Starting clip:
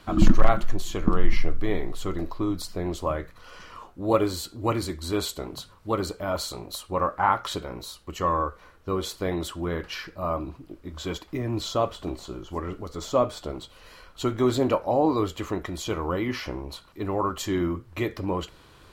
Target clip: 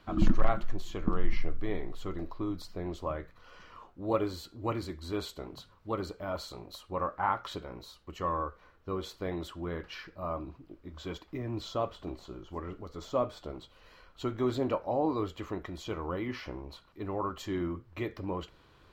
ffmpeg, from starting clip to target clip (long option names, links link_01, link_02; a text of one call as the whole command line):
ffmpeg -i in.wav -af "equalizer=frequency=10000:width_type=o:width=1.2:gain=-12,volume=-7.5dB" out.wav